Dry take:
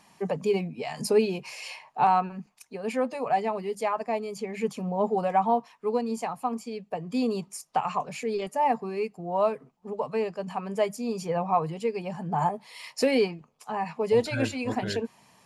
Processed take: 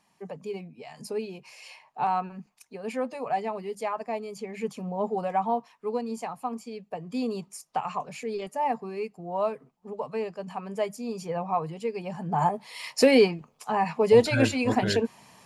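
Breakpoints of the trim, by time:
1.29 s -10 dB
2.36 s -3 dB
11.78 s -3 dB
12.93 s +5 dB

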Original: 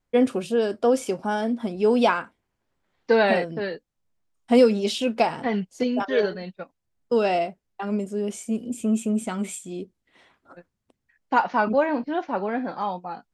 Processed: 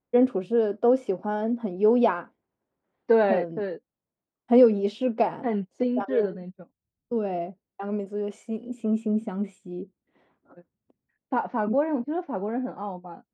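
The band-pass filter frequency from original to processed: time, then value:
band-pass filter, Q 0.58
6.02 s 380 Hz
6.51 s 120 Hz
7.15 s 120 Hz
8.06 s 660 Hz
8.63 s 660 Hz
9.32 s 260 Hz

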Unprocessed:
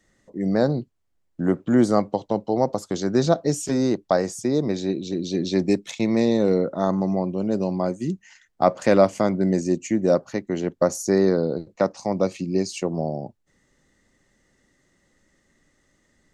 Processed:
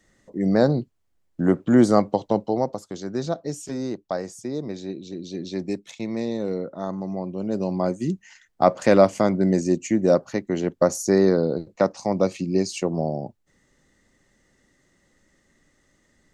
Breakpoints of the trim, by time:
2.40 s +2 dB
2.85 s -7.5 dB
7.02 s -7.5 dB
7.88 s +1 dB

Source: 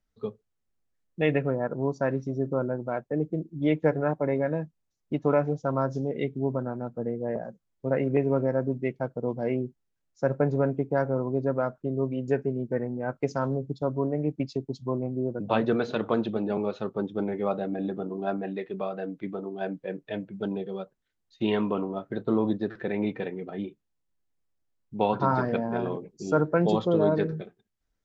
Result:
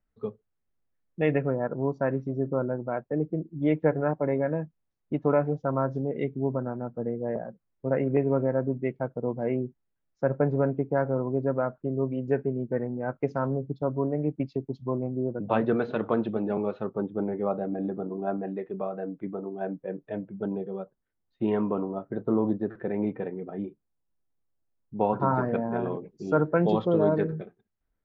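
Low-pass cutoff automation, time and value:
16.68 s 2.2 kHz
17.09 s 1.3 kHz
24.97 s 1.3 kHz
25.81 s 2 kHz
26.14 s 3.1 kHz
26.68 s 3.1 kHz
27.31 s 2 kHz

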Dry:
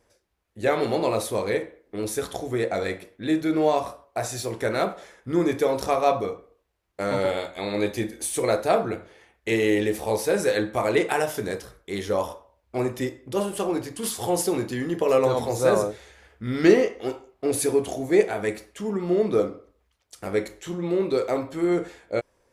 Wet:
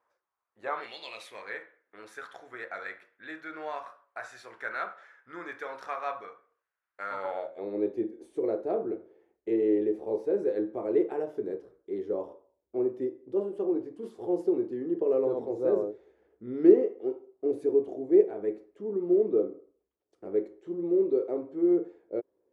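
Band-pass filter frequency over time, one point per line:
band-pass filter, Q 3.2
0.74 s 1.1 kHz
0.98 s 3.8 kHz
1.51 s 1.5 kHz
7.07 s 1.5 kHz
7.68 s 370 Hz

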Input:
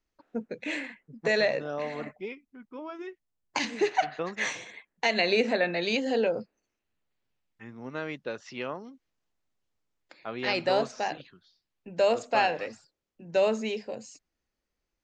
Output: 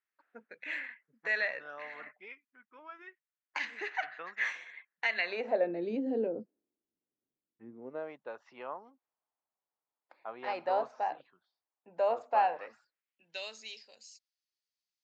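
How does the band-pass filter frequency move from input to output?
band-pass filter, Q 2.1
5.22 s 1.7 kHz
5.77 s 310 Hz
7.70 s 310 Hz
8.18 s 880 Hz
12.51 s 880 Hz
13.53 s 4.6 kHz

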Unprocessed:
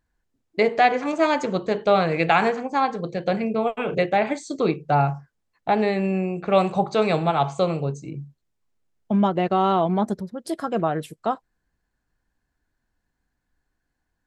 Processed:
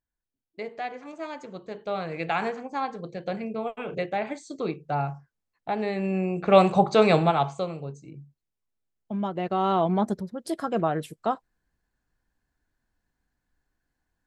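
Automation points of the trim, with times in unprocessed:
1.48 s -16 dB
2.42 s -8 dB
5.77 s -8 dB
6.53 s +2 dB
7.20 s +2 dB
7.71 s -10 dB
9.19 s -10 dB
9.83 s -2 dB

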